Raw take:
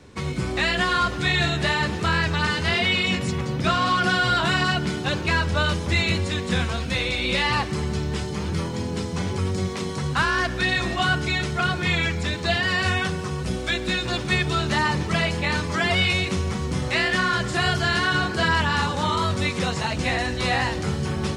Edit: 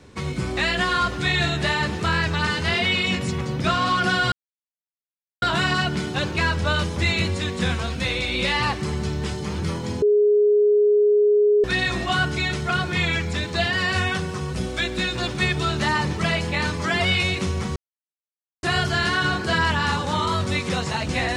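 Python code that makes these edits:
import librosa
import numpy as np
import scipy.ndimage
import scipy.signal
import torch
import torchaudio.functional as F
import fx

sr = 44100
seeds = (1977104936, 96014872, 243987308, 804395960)

y = fx.edit(x, sr, fx.insert_silence(at_s=4.32, length_s=1.1),
    fx.bleep(start_s=8.92, length_s=1.62, hz=416.0, db=-13.5),
    fx.silence(start_s=16.66, length_s=0.87), tone=tone)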